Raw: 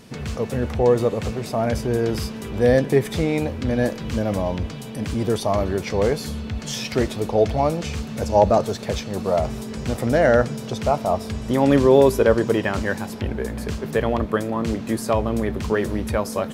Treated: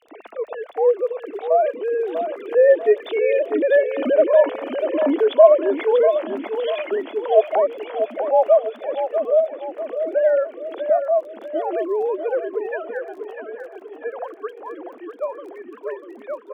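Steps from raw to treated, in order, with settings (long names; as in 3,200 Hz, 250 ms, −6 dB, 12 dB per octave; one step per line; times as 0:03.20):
three sine waves on the formant tracks
source passing by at 0:04.51, 7 m/s, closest 6.7 metres
parametric band 650 Hz +9 dB 0.35 octaves
in parallel at +3 dB: downward compressor, threshold −33 dBFS, peak gain reduction 19.5 dB
on the sum: Chebyshev high-pass with heavy ripple 210 Hz, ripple 3 dB
surface crackle 12 per second −46 dBFS
on a send: repeating echo 643 ms, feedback 44%, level −8 dB
on the sum: level +5.5 dB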